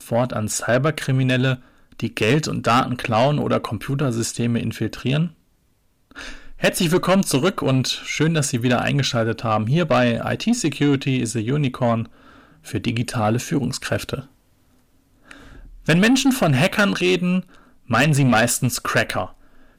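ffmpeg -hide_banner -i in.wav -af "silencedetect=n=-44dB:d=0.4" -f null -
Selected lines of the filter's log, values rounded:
silence_start: 5.33
silence_end: 6.11 | silence_duration: 0.78
silence_start: 14.27
silence_end: 15.26 | silence_duration: 0.99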